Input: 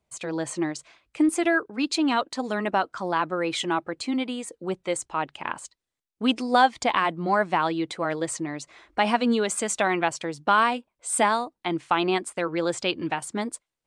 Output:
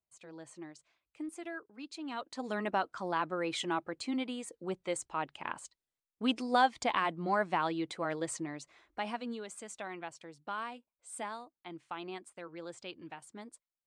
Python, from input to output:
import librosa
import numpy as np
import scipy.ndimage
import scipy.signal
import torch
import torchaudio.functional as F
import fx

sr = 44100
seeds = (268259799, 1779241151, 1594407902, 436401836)

y = fx.gain(x, sr, db=fx.line((1.99, -20.0), (2.5, -8.0), (8.42, -8.0), (9.43, -19.0)))